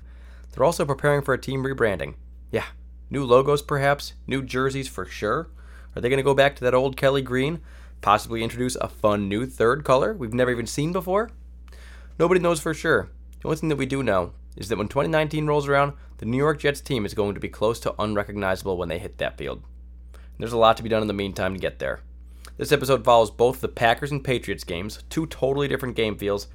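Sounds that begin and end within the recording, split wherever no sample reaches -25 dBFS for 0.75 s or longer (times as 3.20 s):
12.20–19.54 s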